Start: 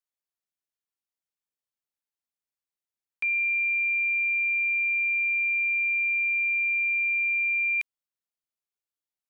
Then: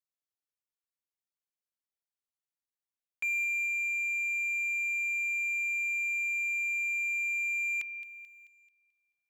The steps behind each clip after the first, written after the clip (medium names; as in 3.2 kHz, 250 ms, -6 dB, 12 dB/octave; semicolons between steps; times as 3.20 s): feedback echo behind a high-pass 218 ms, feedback 46%, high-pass 2.1 kHz, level -13 dB; waveshaping leveller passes 1; trim -5.5 dB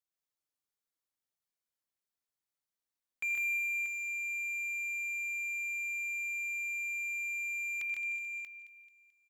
peaking EQ 2.7 kHz -3.5 dB 0.3 oct; on a send: multi-tap echo 82/128/152/303/635 ms -14/-5/-3.5/-17/-8 dB; on the sum: trim -1.5 dB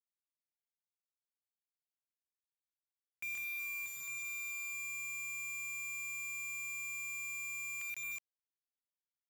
word length cut 6-bit, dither none; trim -8.5 dB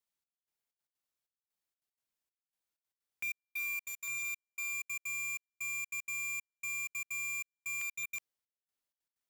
trance gate "xxx...xxx.x.x" 190 bpm -60 dB; trim +4.5 dB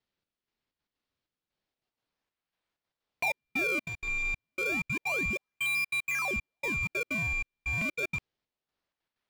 low-pass 4.7 kHz 24 dB/octave; in parallel at -4 dB: decimation with a swept rate 31×, swing 160% 0.3 Hz; on the sum: trim +6.5 dB